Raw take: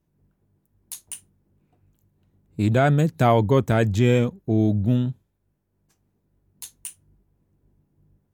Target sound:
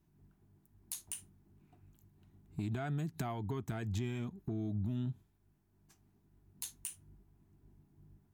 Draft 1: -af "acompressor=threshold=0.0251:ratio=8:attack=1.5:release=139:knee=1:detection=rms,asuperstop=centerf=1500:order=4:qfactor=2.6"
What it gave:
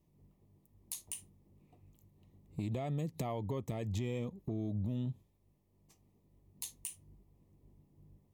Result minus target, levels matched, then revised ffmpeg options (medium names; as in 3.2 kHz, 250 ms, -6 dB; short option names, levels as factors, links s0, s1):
2 kHz band -5.0 dB
-af "acompressor=threshold=0.0251:ratio=8:attack=1.5:release=139:knee=1:detection=rms,asuperstop=centerf=520:order=4:qfactor=2.6"